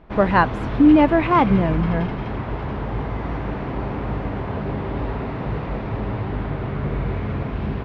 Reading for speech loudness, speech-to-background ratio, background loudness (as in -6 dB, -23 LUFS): -17.5 LUFS, 9.5 dB, -27.0 LUFS